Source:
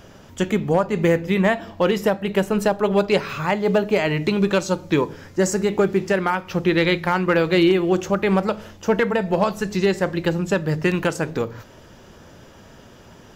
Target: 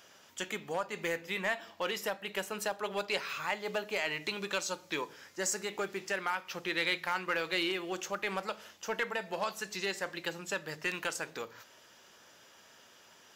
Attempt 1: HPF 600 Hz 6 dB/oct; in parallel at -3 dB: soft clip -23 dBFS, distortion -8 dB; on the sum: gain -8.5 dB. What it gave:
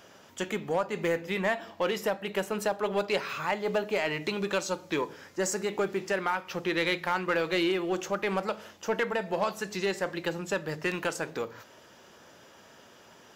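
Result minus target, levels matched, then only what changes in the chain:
500 Hz band +3.5 dB
change: HPF 2100 Hz 6 dB/oct

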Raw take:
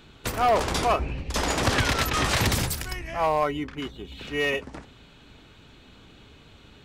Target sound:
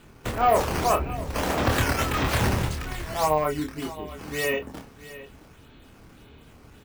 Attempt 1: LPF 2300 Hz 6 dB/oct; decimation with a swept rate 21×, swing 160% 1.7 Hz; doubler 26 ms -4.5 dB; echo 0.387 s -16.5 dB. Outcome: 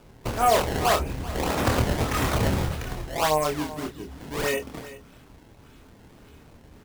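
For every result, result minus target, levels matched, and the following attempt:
echo 0.28 s early; decimation with a swept rate: distortion +7 dB
LPF 2300 Hz 6 dB/oct; decimation with a swept rate 21×, swing 160% 1.7 Hz; doubler 26 ms -4.5 dB; echo 0.667 s -16.5 dB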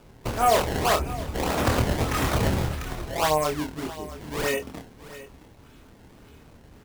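decimation with a swept rate: distortion +7 dB
LPF 2300 Hz 6 dB/oct; decimation with a swept rate 7×, swing 160% 1.7 Hz; doubler 26 ms -4.5 dB; echo 0.667 s -16.5 dB

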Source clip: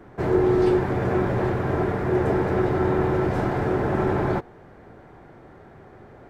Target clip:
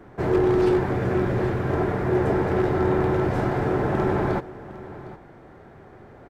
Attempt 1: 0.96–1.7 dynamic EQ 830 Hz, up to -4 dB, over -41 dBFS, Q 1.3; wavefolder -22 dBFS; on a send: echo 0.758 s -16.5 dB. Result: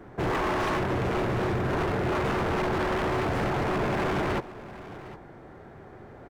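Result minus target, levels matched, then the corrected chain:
wavefolder: distortion +26 dB
0.96–1.7 dynamic EQ 830 Hz, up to -4 dB, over -41 dBFS, Q 1.3; wavefolder -13 dBFS; on a send: echo 0.758 s -16.5 dB

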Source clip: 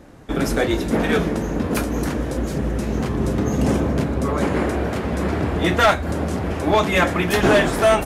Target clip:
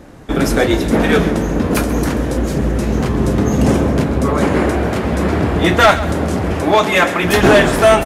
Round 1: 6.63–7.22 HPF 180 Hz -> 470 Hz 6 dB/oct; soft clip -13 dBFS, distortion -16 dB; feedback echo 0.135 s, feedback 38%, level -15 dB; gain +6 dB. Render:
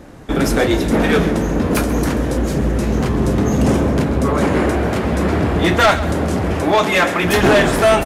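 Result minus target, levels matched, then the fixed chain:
soft clip: distortion +19 dB
6.63–7.22 HPF 180 Hz -> 470 Hz 6 dB/oct; soft clip -2 dBFS, distortion -35 dB; feedback echo 0.135 s, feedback 38%, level -15 dB; gain +6 dB

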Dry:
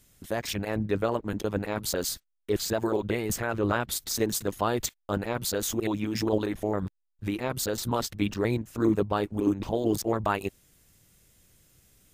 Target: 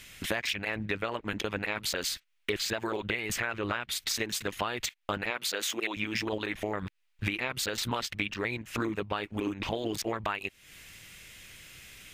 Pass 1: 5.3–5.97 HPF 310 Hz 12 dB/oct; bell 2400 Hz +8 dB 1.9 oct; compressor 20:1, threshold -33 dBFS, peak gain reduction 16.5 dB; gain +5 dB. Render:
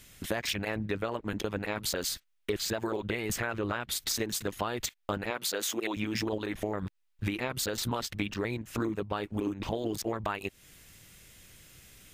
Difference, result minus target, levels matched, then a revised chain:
2000 Hz band -3.5 dB
5.3–5.97 HPF 310 Hz 12 dB/oct; bell 2400 Hz +18.5 dB 1.9 oct; compressor 20:1, threshold -33 dBFS, peak gain reduction 21 dB; gain +5 dB

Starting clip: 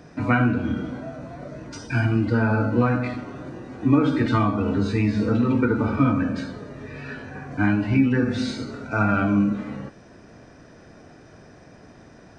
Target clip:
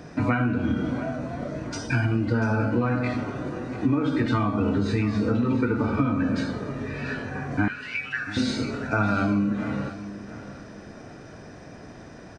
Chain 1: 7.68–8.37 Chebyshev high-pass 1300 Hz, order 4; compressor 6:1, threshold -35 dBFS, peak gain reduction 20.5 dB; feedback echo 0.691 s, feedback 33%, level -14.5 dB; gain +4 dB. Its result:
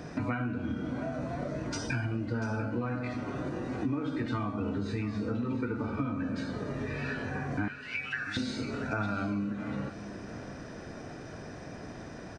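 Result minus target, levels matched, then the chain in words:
compressor: peak gain reduction +9 dB
7.68–8.37 Chebyshev high-pass 1300 Hz, order 4; compressor 6:1, threshold -24 dBFS, peak gain reduction 11.5 dB; feedback echo 0.691 s, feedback 33%, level -14.5 dB; gain +4 dB

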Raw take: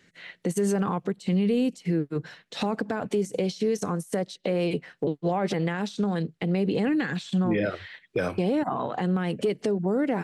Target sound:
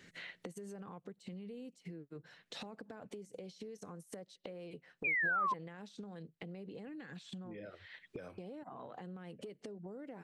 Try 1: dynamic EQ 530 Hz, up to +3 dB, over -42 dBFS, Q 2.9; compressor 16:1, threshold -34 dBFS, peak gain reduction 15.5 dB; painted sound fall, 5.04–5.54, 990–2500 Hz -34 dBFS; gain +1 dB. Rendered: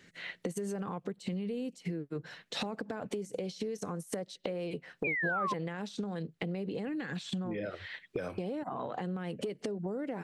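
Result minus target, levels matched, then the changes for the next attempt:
compressor: peak gain reduction -11 dB
change: compressor 16:1, threshold -46 dBFS, peak gain reduction 26.5 dB

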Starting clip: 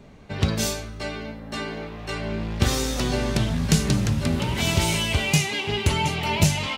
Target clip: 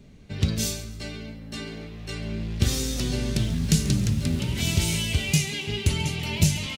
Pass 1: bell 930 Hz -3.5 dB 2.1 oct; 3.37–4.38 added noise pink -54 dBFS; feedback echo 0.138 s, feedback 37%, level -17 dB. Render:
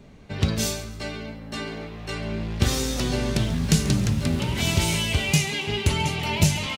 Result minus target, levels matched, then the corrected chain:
1000 Hz band +8.0 dB
bell 930 Hz -13.5 dB 2.1 oct; 3.37–4.38 added noise pink -54 dBFS; feedback echo 0.138 s, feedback 37%, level -17 dB

